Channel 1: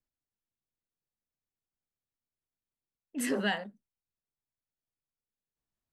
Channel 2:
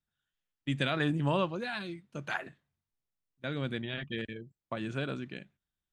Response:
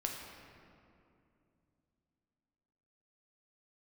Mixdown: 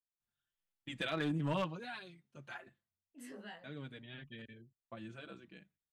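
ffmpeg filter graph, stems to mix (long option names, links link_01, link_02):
-filter_complex "[0:a]flanger=delay=18:depth=5:speed=0.84,volume=-16.5dB[link_01];[1:a]asplit=2[link_02][link_03];[link_03]adelay=5.2,afreqshift=-0.46[link_04];[link_02][link_04]amix=inputs=2:normalize=1,adelay=200,volume=-3dB,afade=type=out:start_time=1.66:duration=0.62:silence=0.446684[link_05];[link_01][link_05]amix=inputs=2:normalize=0,aeval=exprs='clip(val(0),-1,0.0355)':channel_layout=same"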